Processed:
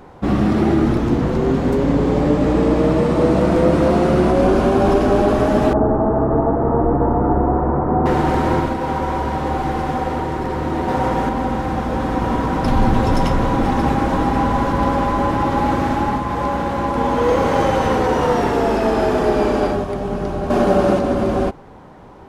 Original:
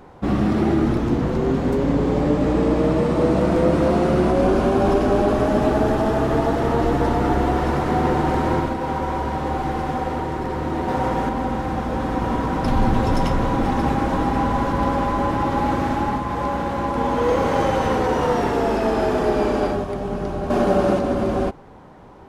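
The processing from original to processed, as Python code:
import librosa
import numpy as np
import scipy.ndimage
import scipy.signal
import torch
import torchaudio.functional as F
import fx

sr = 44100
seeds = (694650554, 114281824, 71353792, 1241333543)

y = fx.lowpass(x, sr, hz=1200.0, slope=24, at=(5.73, 8.06))
y = F.gain(torch.from_numpy(y), 3.0).numpy()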